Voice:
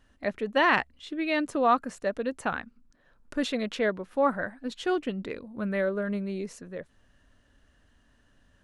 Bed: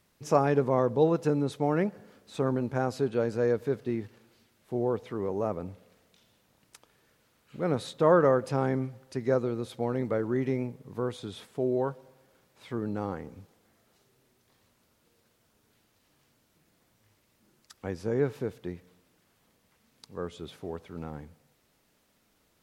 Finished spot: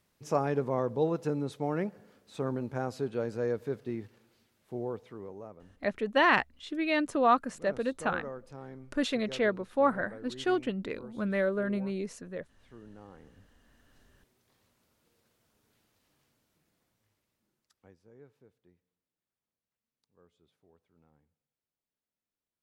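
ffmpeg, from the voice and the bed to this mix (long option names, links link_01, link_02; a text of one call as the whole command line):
ffmpeg -i stem1.wav -i stem2.wav -filter_complex "[0:a]adelay=5600,volume=-1dB[link_01];[1:a]volume=9dB,afade=type=out:start_time=4.58:duration=0.95:silence=0.223872,afade=type=in:start_time=13.1:duration=0.89:silence=0.199526,afade=type=out:start_time=15.93:duration=2.07:silence=0.0630957[link_02];[link_01][link_02]amix=inputs=2:normalize=0" out.wav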